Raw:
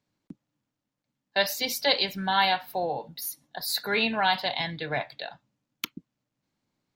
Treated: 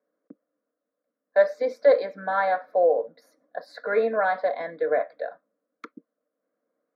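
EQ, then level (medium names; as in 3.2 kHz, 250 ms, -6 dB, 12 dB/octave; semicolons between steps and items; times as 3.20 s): resonant high-pass 440 Hz, resonance Q 4.9; low-pass 1.5 kHz 12 dB/octave; static phaser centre 580 Hz, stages 8; +4.0 dB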